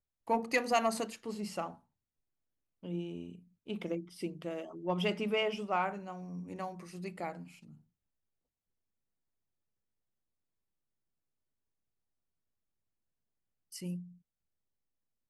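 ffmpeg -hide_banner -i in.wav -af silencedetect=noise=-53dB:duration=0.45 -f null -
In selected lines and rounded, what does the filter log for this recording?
silence_start: 1.77
silence_end: 2.83 | silence_duration: 1.06
silence_start: 7.77
silence_end: 13.72 | silence_duration: 5.95
silence_start: 14.13
silence_end: 15.29 | silence_duration: 1.16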